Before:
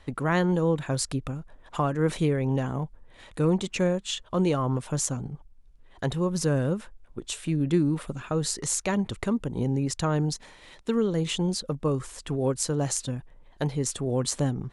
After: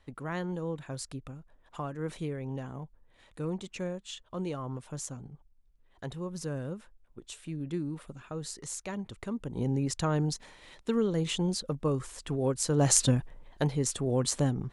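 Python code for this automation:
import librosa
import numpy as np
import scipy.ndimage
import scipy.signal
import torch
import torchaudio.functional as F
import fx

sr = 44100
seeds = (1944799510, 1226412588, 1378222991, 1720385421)

y = fx.gain(x, sr, db=fx.line((9.2, -11.0), (9.68, -3.0), (12.62, -3.0), (13.02, 8.0), (13.72, -1.5)))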